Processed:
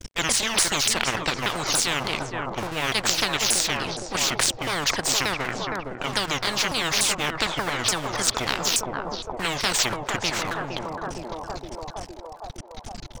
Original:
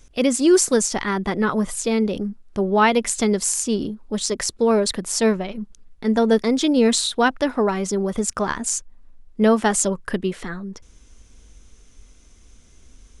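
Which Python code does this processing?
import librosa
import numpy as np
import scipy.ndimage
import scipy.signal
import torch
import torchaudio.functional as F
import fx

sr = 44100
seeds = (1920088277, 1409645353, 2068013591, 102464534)

p1 = fx.pitch_ramps(x, sr, semitones=-10.5, every_ms=292)
p2 = fx.low_shelf(p1, sr, hz=250.0, db=4.0)
p3 = fx.hum_notches(p2, sr, base_hz=60, count=2)
p4 = fx.level_steps(p3, sr, step_db=21)
p5 = p3 + F.gain(torch.from_numpy(p4), 1.5).numpy()
p6 = np.sign(p5) * np.maximum(np.abs(p5) - 10.0 ** (-42.0 / 20.0), 0.0)
p7 = p6 + fx.echo_banded(p6, sr, ms=463, feedback_pct=67, hz=750.0, wet_db=-12.5, dry=0)
y = fx.spectral_comp(p7, sr, ratio=10.0)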